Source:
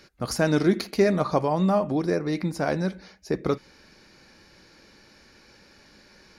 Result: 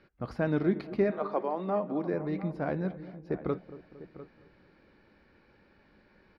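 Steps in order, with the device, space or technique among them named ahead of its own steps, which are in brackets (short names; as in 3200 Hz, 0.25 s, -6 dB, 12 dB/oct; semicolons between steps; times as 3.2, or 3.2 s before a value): shout across a valley (air absorption 440 m; outdoor echo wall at 120 m, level -15 dB); 1.1–2.12 HPF 440 Hz -> 160 Hz 24 dB/oct; dark delay 0.229 s, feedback 52%, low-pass 1000 Hz, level -15.5 dB; gain -5.5 dB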